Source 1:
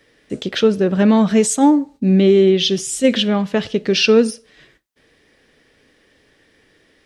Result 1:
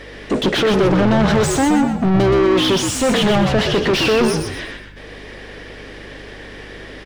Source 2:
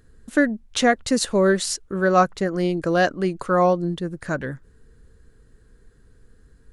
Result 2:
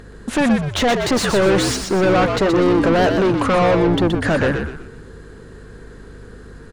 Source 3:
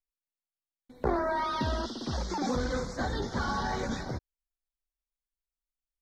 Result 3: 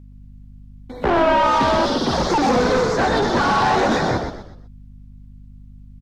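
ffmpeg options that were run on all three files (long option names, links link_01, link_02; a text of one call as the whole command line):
ffmpeg -i in.wav -filter_complex "[0:a]equalizer=frequency=1500:width=1.3:gain=-3.5,asplit=2[link_01][link_02];[link_02]highpass=frequency=720:poles=1,volume=35dB,asoftclip=type=tanh:threshold=-2dB[link_03];[link_01][link_03]amix=inputs=2:normalize=0,lowpass=frequency=1400:poles=1,volume=-6dB,aeval=exprs='val(0)+0.0126*(sin(2*PI*50*n/s)+sin(2*PI*2*50*n/s)/2+sin(2*PI*3*50*n/s)/3+sin(2*PI*4*50*n/s)/4+sin(2*PI*5*50*n/s)/5)':channel_layout=same,asoftclip=type=tanh:threshold=-10dB,asplit=5[link_04][link_05][link_06][link_07][link_08];[link_05]adelay=123,afreqshift=-65,volume=-5.5dB[link_09];[link_06]adelay=246,afreqshift=-130,volume=-14.1dB[link_10];[link_07]adelay=369,afreqshift=-195,volume=-22.8dB[link_11];[link_08]adelay=492,afreqshift=-260,volume=-31.4dB[link_12];[link_04][link_09][link_10][link_11][link_12]amix=inputs=5:normalize=0,volume=-2.5dB" out.wav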